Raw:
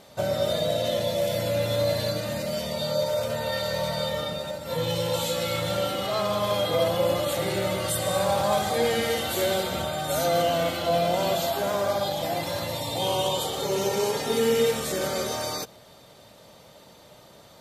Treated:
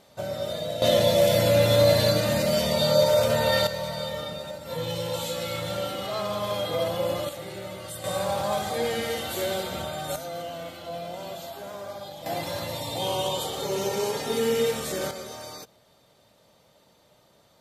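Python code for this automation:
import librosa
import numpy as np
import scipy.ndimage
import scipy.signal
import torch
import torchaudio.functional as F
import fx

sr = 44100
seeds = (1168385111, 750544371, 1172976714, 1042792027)

y = fx.gain(x, sr, db=fx.steps((0.0, -5.5), (0.82, 6.0), (3.67, -3.5), (7.29, -10.5), (8.04, -3.5), (10.16, -12.0), (12.26, -2.0), (15.11, -9.5)))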